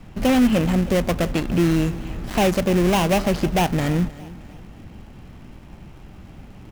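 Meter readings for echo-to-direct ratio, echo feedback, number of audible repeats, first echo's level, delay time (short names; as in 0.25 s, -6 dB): -18.0 dB, 42%, 3, -19.0 dB, 0.312 s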